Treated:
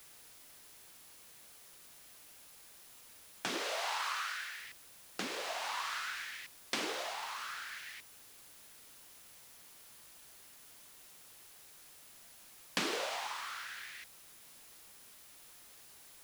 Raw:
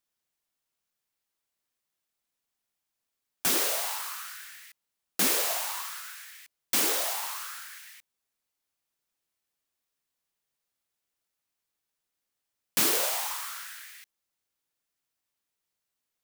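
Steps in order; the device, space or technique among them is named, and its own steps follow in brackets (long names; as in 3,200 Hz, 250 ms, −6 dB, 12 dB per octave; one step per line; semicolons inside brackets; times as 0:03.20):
medium wave at night (band-pass filter 110–4,100 Hz; downward compressor, threshold −38 dBFS, peak gain reduction 11.5 dB; amplitude tremolo 0.48 Hz, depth 50%; steady tone 10,000 Hz −71 dBFS; white noise bed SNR 13 dB)
0:03.62–0:04.60: high-pass filter 380 Hz 12 dB per octave
level +6.5 dB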